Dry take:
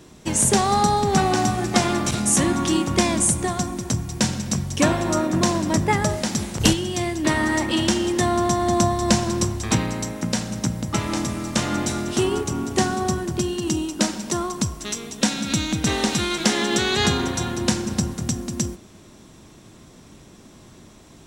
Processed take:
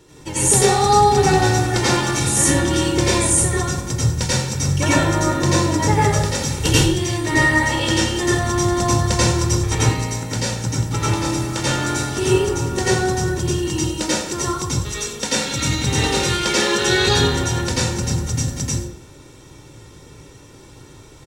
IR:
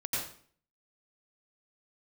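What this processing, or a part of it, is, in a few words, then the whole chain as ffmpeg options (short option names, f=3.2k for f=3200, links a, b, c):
microphone above a desk: -filter_complex "[0:a]aecho=1:1:2.2:0.61[a];[1:a]atrim=start_sample=2205[b];[a][b]afir=irnorm=-1:irlink=0,volume=-2dB"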